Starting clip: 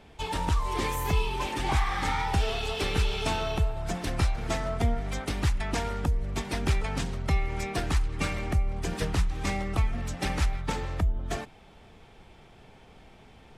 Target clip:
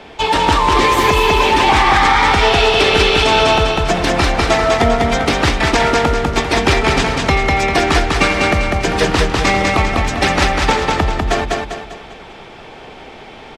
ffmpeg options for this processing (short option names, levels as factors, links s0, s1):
-filter_complex "[0:a]acrossover=split=250 6300:gain=0.251 1 0.224[s0][s1][s2];[s0][s1][s2]amix=inputs=3:normalize=0,asplit=2[s3][s4];[s4]aecho=0:1:198|396|594|792|990:0.708|0.297|0.125|0.0525|0.022[s5];[s3][s5]amix=inputs=2:normalize=0,alimiter=level_in=9.44:limit=0.891:release=50:level=0:latency=1,volume=0.891"